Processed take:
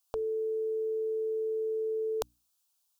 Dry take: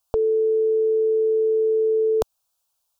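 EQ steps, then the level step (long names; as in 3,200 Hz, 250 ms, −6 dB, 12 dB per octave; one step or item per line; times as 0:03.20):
tilt shelving filter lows −7 dB, about 910 Hz
mains-hum notches 60/120/180/240/300 Hz
−8.0 dB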